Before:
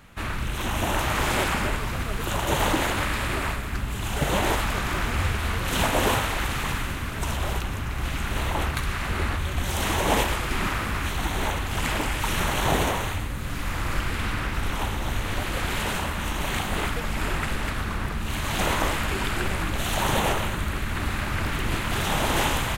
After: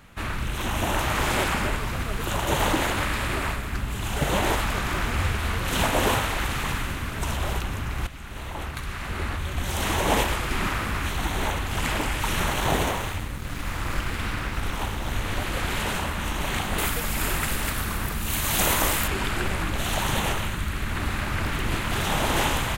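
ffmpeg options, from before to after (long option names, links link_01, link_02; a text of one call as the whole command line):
ffmpeg -i in.wav -filter_complex "[0:a]asettb=1/sr,asplit=3[link_01][link_02][link_03];[link_01]atrim=end=12.534[link_04];[link_02]atrim=start=12.53:end=15.13,asetpts=PTS-STARTPTS,afade=type=in:duration=0.004:curve=qsin,afade=type=out:start_time=2.596:duration=0.004:curve=qsin,aeval=exprs='sgn(val(0))*max(abs(val(0))-0.00891,0)':channel_layout=same[link_05];[link_03]atrim=start=15.126[link_06];[link_04][link_05]acrossfade=duration=0.004:curve1=hsin:curve2=qsin[link_07];[link_07][link_06]acrossfade=duration=0.004:curve1=qsin:curve2=hsin,asettb=1/sr,asplit=3[link_08][link_09][link_10];[link_08]atrim=end=16.784[link_11];[link_09]atrim=start=16.78:end=19.08,asetpts=PTS-STARTPTS,afade=type=in:duration=0.004:curve=qsin,afade=type=out:start_time=2.296:duration=0.004:curve=qsin,aemphasis=mode=production:type=50fm[link_12];[link_10]atrim=start=19.076[link_13];[link_11][link_12]acrossfade=duration=0.004:curve1=hsin:curve2=qsin[link_14];[link_14][link_13]acrossfade=duration=0.004:curve1=qsin:curve2=hsin,asettb=1/sr,asplit=3[link_15][link_16][link_17];[link_15]atrim=end=19.994[link_18];[link_16]atrim=start=19.99:end=20.8,asetpts=PTS-STARTPTS,afade=type=in:duration=0.004:curve=qsin,afade=type=out:start_time=0.806:duration=0.004:curve=qsin,equalizer=frequency=560:width_type=o:width=2:gain=-5.5[link_19];[link_17]atrim=start=20.796[link_20];[link_18][link_19]acrossfade=duration=0.004:curve1=hsin:curve2=qsin[link_21];[link_21][link_20]acrossfade=duration=0.004:curve1=qsin:curve2=hsin,asplit=2[link_22][link_23];[link_22]atrim=end=8.07,asetpts=PTS-STARTPTS,afade=type=out:start_time=8.066:duration=0.004:curve=hsin:silence=0.223872[link_24];[link_23]atrim=start=8.07,asetpts=PTS-STARTPTS,afade=type=in:duration=1.89:silence=0.223872[link_25];[link_24][link_25]concat=n=2:v=0:a=1" out.wav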